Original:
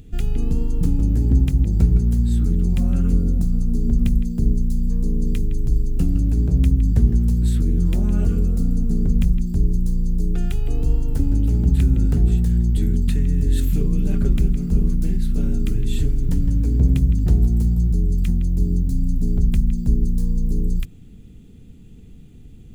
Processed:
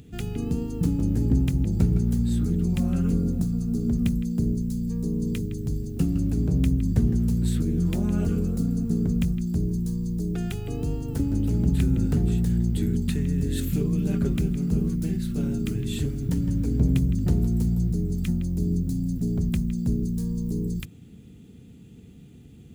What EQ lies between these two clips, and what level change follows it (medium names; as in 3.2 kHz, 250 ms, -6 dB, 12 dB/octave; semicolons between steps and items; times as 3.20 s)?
high-pass 98 Hz 12 dB/octave; 0.0 dB